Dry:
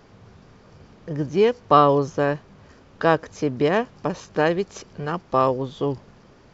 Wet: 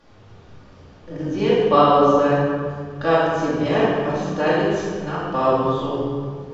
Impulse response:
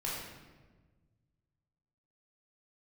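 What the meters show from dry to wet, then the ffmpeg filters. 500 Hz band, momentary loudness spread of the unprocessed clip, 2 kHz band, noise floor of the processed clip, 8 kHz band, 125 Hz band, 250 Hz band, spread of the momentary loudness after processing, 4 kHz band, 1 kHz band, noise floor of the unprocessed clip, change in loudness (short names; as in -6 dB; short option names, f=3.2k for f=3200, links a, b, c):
+3.0 dB, 14 LU, +2.5 dB, -47 dBFS, n/a, +2.5 dB, +4.0 dB, 12 LU, +4.0 dB, +2.5 dB, -52 dBFS, +2.5 dB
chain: -filter_complex "[0:a]equalizer=f=3.6k:w=2.2:g=4.5[a];[1:a]atrim=start_sample=2205,asetrate=26901,aresample=44100[b];[a][b]afir=irnorm=-1:irlink=0,volume=-5dB"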